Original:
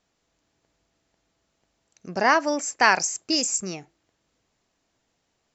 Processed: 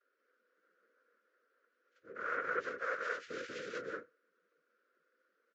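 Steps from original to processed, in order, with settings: inharmonic rescaling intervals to 91%; comb 6.8 ms, depth 46%; on a send: echo 0.189 s -4 dB; on the sum: noise vocoder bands 3; reverse; compressor 10:1, threshold -33 dBFS, peak gain reduction 18 dB; reverse; double band-pass 840 Hz, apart 1.5 oct; gain +6.5 dB; Vorbis 48 kbps 16000 Hz

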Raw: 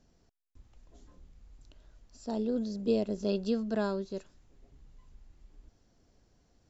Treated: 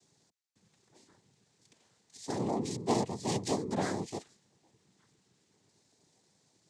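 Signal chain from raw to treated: bell 4700 Hz +11.5 dB 0.66 oct; noise vocoder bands 6; gain -1.5 dB

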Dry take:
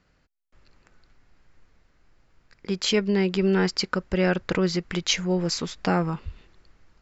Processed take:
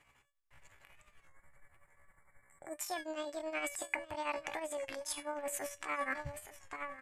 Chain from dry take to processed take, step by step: low shelf 110 Hz -11.5 dB; in parallel at -2.5 dB: limiter -18 dBFS, peak gain reduction 8.5 dB; on the sum: spectral gain 1.3–2.79, 1400–4200 Hz -27 dB; resonator 350 Hz, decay 0.32 s, harmonics all, mix 80%; echo 0.881 s -19 dB; tremolo triangle 11 Hz, depth 75%; pitch shift +8.5 st; reverse; compressor 6:1, threshold -45 dBFS, peak gain reduction 15.5 dB; reverse; graphic EQ 125/250/500/1000/2000/4000 Hz +4/-8/-4/+4/+8/-10 dB; record warp 33 1/3 rpm, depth 100 cents; gain +9.5 dB

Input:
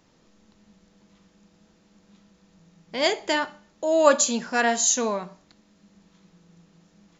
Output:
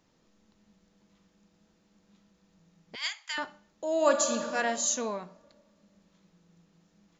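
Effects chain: 2.95–3.38 steep high-pass 1100 Hz 36 dB/oct; 3.93–4.42 reverb throw, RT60 2.3 s, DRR 5 dB; gain -7.5 dB

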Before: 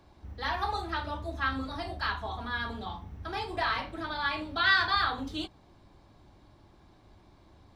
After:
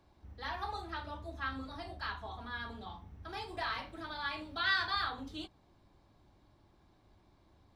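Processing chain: 3.29–5.09 high shelf 4400 Hz +5 dB; gain -8 dB

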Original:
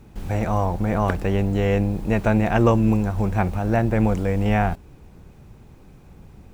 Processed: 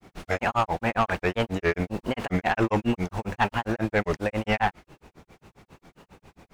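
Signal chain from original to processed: grains 0.119 s, grains 7.4/s, spray 18 ms, pitch spread up and down by 3 st; overdrive pedal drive 18 dB, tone 5800 Hz, clips at -8.5 dBFS; dynamic EQ 2200 Hz, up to +5 dB, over -36 dBFS, Q 0.73; gain -4 dB

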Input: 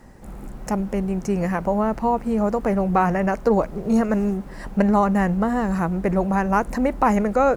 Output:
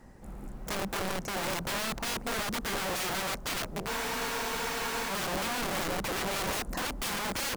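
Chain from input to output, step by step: dynamic EQ 2200 Hz, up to -6 dB, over -38 dBFS, Q 1.2; wrapped overs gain 21.5 dB; spectral freeze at 3.91, 1.19 s; gain -6.5 dB

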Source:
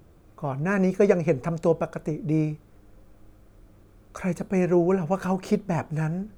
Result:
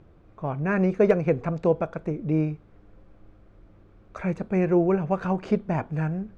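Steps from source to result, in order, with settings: LPF 3200 Hz 12 dB/oct; hard clip -9.5 dBFS, distortion -35 dB

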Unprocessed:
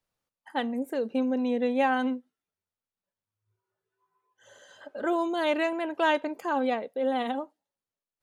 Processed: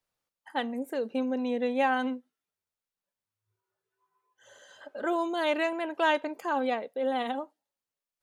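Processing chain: low shelf 360 Hz -5 dB

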